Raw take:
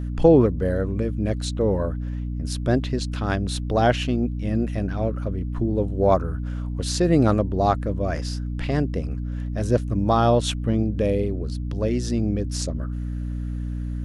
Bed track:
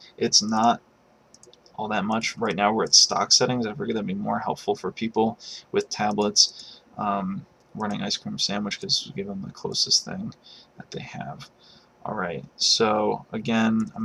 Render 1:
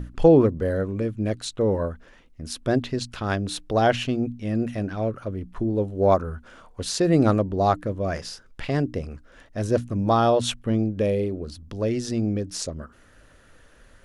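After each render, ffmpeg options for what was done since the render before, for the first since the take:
ffmpeg -i in.wav -af "bandreject=frequency=60:width_type=h:width=6,bandreject=frequency=120:width_type=h:width=6,bandreject=frequency=180:width_type=h:width=6,bandreject=frequency=240:width_type=h:width=6,bandreject=frequency=300:width_type=h:width=6" out.wav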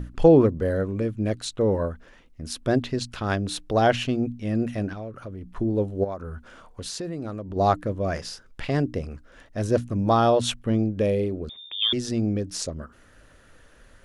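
ffmpeg -i in.wav -filter_complex "[0:a]asettb=1/sr,asplit=3[link_01][link_02][link_03];[link_01]atrim=end=4.934[link_04];[link_02]atrim=start=4.93:end=5.53,asetpts=PTS-STARTPTS,afade=type=in:duration=0.004:curve=qsin,afade=type=out:start_time=0.596:duration=0.004:curve=qsin,acompressor=threshold=-34dB:ratio=3:attack=3.2:release=140:knee=1:detection=peak[link_05];[link_03]atrim=start=5.526[link_06];[link_04][link_05]acrossfade=duration=0.004:curve1=hsin:curve2=qsin[link_07];[link_07][link_06]acrossfade=duration=0.004:curve1=qsin:curve2=hsin,asplit=3[link_08][link_09][link_10];[link_08]afade=type=out:start_time=6.03:duration=0.02[link_11];[link_09]acompressor=threshold=-31dB:ratio=4:attack=3.2:release=140:knee=1:detection=peak,afade=type=in:start_time=6.03:duration=0.02,afade=type=out:start_time=7.55:duration=0.02[link_12];[link_10]afade=type=in:start_time=7.55:duration=0.02[link_13];[link_11][link_12][link_13]amix=inputs=3:normalize=0,asettb=1/sr,asplit=3[link_14][link_15][link_16];[link_14]atrim=end=11.494[link_17];[link_15]atrim=start=11.49:end=11.93,asetpts=PTS-STARTPTS,afade=type=in:duration=0.004:curve=qsin,afade=type=out:start_time=0.436:duration=0.004:curve=qsin,lowpass=frequency=3100:width_type=q:width=0.5098,lowpass=frequency=3100:width_type=q:width=0.6013,lowpass=frequency=3100:width_type=q:width=0.9,lowpass=frequency=3100:width_type=q:width=2.563,afreqshift=-3700[link_18];[link_16]atrim=start=11.926[link_19];[link_17][link_18]acrossfade=duration=0.004:curve1=hsin:curve2=qsin[link_20];[link_20][link_19]acrossfade=duration=0.004:curve1=qsin:curve2=hsin" out.wav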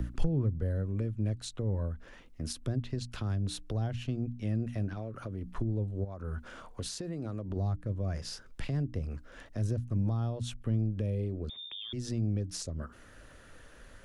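ffmpeg -i in.wav -filter_complex "[0:a]acrossover=split=140[link_01][link_02];[link_02]acompressor=threshold=-36dB:ratio=8[link_03];[link_01][link_03]amix=inputs=2:normalize=0,acrossover=split=360|5300[link_04][link_05][link_06];[link_05]alimiter=level_in=11dB:limit=-24dB:level=0:latency=1:release=161,volume=-11dB[link_07];[link_04][link_07][link_06]amix=inputs=3:normalize=0" out.wav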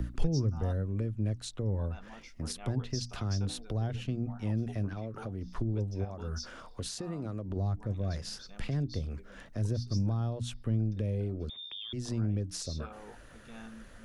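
ffmpeg -i in.wav -i bed.wav -filter_complex "[1:a]volume=-26.5dB[link_01];[0:a][link_01]amix=inputs=2:normalize=0" out.wav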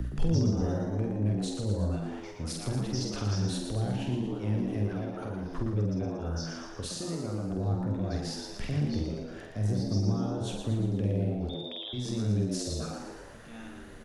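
ffmpeg -i in.wav -filter_complex "[0:a]asplit=2[link_01][link_02];[link_02]adelay=48,volume=-4.5dB[link_03];[link_01][link_03]amix=inputs=2:normalize=0,asplit=8[link_04][link_05][link_06][link_07][link_08][link_09][link_10][link_11];[link_05]adelay=116,afreqshift=83,volume=-5.5dB[link_12];[link_06]adelay=232,afreqshift=166,volume=-10.7dB[link_13];[link_07]adelay=348,afreqshift=249,volume=-15.9dB[link_14];[link_08]adelay=464,afreqshift=332,volume=-21.1dB[link_15];[link_09]adelay=580,afreqshift=415,volume=-26.3dB[link_16];[link_10]adelay=696,afreqshift=498,volume=-31.5dB[link_17];[link_11]adelay=812,afreqshift=581,volume=-36.7dB[link_18];[link_04][link_12][link_13][link_14][link_15][link_16][link_17][link_18]amix=inputs=8:normalize=0" out.wav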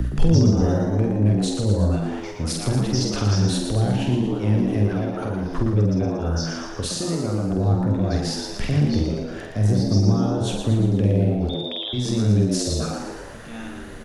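ffmpeg -i in.wav -af "volume=10dB" out.wav

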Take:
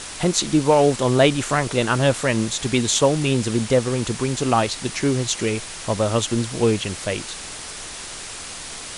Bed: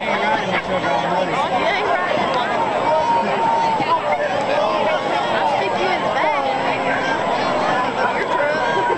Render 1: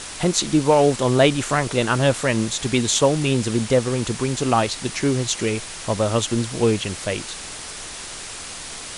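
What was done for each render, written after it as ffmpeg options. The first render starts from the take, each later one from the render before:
ffmpeg -i in.wav -af anull out.wav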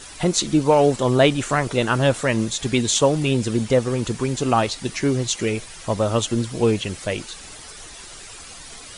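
ffmpeg -i in.wav -af "afftdn=noise_reduction=10:noise_floor=-35" out.wav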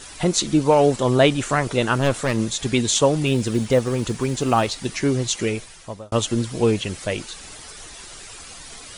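ffmpeg -i in.wav -filter_complex "[0:a]asplit=3[link_01][link_02][link_03];[link_01]afade=type=out:start_time=1.94:duration=0.02[link_04];[link_02]aeval=exprs='clip(val(0),-1,0.0668)':channel_layout=same,afade=type=in:start_time=1.94:duration=0.02,afade=type=out:start_time=2.38:duration=0.02[link_05];[link_03]afade=type=in:start_time=2.38:duration=0.02[link_06];[link_04][link_05][link_06]amix=inputs=3:normalize=0,asettb=1/sr,asplit=3[link_07][link_08][link_09];[link_07]atrim=end=3.264[link_10];[link_08]atrim=start=3.26:end=4.85,asetpts=PTS-STARTPTS,afade=type=in:duration=0.004:curve=qsin,afade=type=out:start_time=1.586:duration=0.004:curve=qsin,acrusher=bits=9:mode=log:mix=0:aa=0.000001[link_11];[link_09]atrim=start=4.846[link_12];[link_10][link_11]acrossfade=duration=0.004:curve1=hsin:curve2=qsin[link_13];[link_13][link_12]acrossfade=duration=0.004:curve1=qsin:curve2=hsin,asplit=2[link_14][link_15];[link_14]atrim=end=6.12,asetpts=PTS-STARTPTS,afade=type=out:start_time=5.45:duration=0.67[link_16];[link_15]atrim=start=6.12,asetpts=PTS-STARTPTS,afade=type=in:duration=0.004:curve=hsin[link_17];[link_16][link_17]concat=n=2:v=0:a=1" out.wav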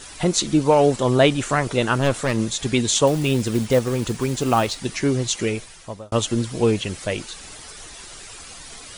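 ffmpeg -i in.wav -filter_complex "[0:a]asettb=1/sr,asplit=3[link_01][link_02][link_03];[link_01]atrim=end=3.074[link_04];[link_02]atrim=start=3.07:end=4.79,asetpts=PTS-STARTPTS,afade=type=in:duration=0.004:curve=qsin,afade=type=out:start_time=1.716:duration=0.004:curve=qsin,acrusher=bits=5:mode=log:mix=0:aa=0.000001[link_05];[link_03]atrim=start=4.786[link_06];[link_04][link_05]acrossfade=duration=0.004:curve1=hsin:curve2=qsin[link_07];[link_07][link_06]acrossfade=duration=0.004:curve1=qsin:curve2=hsin" out.wav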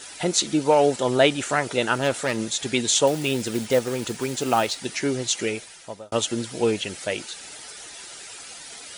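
ffmpeg -i in.wav -af "highpass=frequency=380:poles=1,bandreject=frequency=1100:width=6.8" out.wav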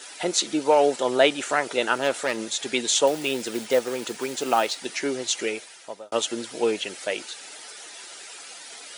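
ffmpeg -i in.wav -af "highpass=310,equalizer=frequency=9600:width_type=o:width=1.6:gain=-2.5" out.wav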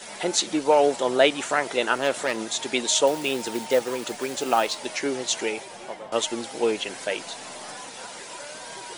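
ffmpeg -i in.wav -i bed.wav -filter_complex "[1:a]volume=-23dB[link_01];[0:a][link_01]amix=inputs=2:normalize=0" out.wav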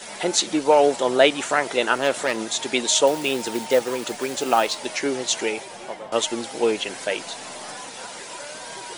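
ffmpeg -i in.wav -af "volume=2.5dB" out.wav

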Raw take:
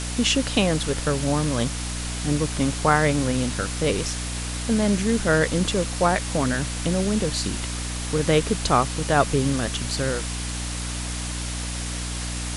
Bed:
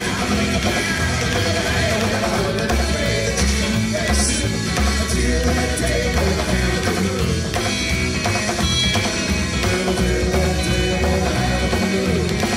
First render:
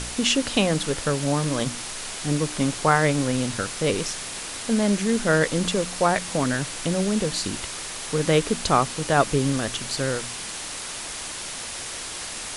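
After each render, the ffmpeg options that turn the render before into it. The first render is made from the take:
ffmpeg -i in.wav -af "bandreject=frequency=60:width_type=h:width=4,bandreject=frequency=120:width_type=h:width=4,bandreject=frequency=180:width_type=h:width=4,bandreject=frequency=240:width_type=h:width=4,bandreject=frequency=300:width_type=h:width=4" out.wav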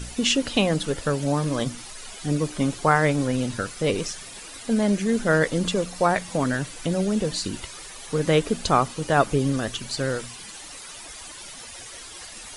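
ffmpeg -i in.wav -af "afftdn=noise_reduction=12:noise_floor=-34" out.wav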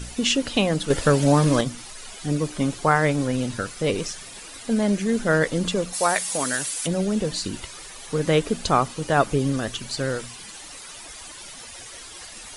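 ffmpeg -i in.wav -filter_complex "[0:a]asettb=1/sr,asplit=3[link_01][link_02][link_03];[link_01]atrim=end=0.904[link_04];[link_02]atrim=start=0.9:end=1.61,asetpts=PTS-STARTPTS,afade=type=in:duration=0.004:curve=qsin,afade=type=out:start_time=0.706:duration=0.004:curve=qsin,acontrast=70[link_05];[link_03]atrim=start=1.606[link_06];[link_04][link_05]acrossfade=duration=0.004:curve1=hsin:curve2=qsin[link_07];[link_07][link_06]acrossfade=duration=0.004:curve1=qsin:curve2=hsin,asplit=3[link_08][link_09][link_10];[link_08]afade=type=out:start_time=5.92:duration=0.02[link_11];[link_09]aemphasis=mode=production:type=riaa,afade=type=in:start_time=5.92:duration=0.02,afade=type=out:start_time=6.86:duration=0.02[link_12];[link_10]afade=type=in:start_time=6.86:duration=0.02[link_13];[link_11][link_12][link_13]amix=inputs=3:normalize=0" out.wav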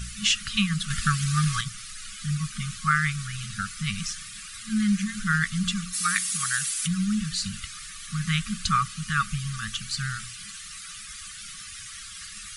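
ffmpeg -i in.wav -af "afftfilt=real='re*(1-between(b*sr/4096,220,1100))':imag='im*(1-between(b*sr/4096,220,1100))':win_size=4096:overlap=0.75,adynamicequalizer=threshold=0.00794:dfrequency=130:dqfactor=2.9:tfrequency=130:tqfactor=2.9:attack=5:release=100:ratio=0.375:range=3:mode=cutabove:tftype=bell" out.wav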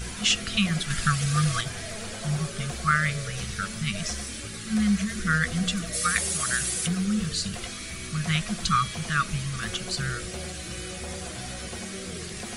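ffmpeg -i in.wav -i bed.wav -filter_complex "[1:a]volume=-19dB[link_01];[0:a][link_01]amix=inputs=2:normalize=0" out.wav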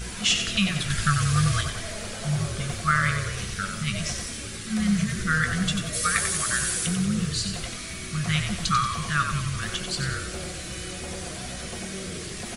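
ffmpeg -i in.wav -filter_complex "[0:a]asplit=2[link_01][link_02];[link_02]adelay=21,volume=-12.5dB[link_03];[link_01][link_03]amix=inputs=2:normalize=0,asplit=7[link_04][link_05][link_06][link_07][link_08][link_09][link_10];[link_05]adelay=92,afreqshift=-37,volume=-7dB[link_11];[link_06]adelay=184,afreqshift=-74,volume=-13dB[link_12];[link_07]adelay=276,afreqshift=-111,volume=-19dB[link_13];[link_08]adelay=368,afreqshift=-148,volume=-25.1dB[link_14];[link_09]adelay=460,afreqshift=-185,volume=-31.1dB[link_15];[link_10]adelay=552,afreqshift=-222,volume=-37.1dB[link_16];[link_04][link_11][link_12][link_13][link_14][link_15][link_16]amix=inputs=7:normalize=0" out.wav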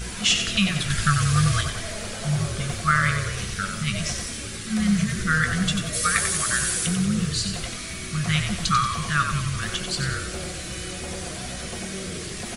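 ffmpeg -i in.wav -af "volume=2dB" out.wav

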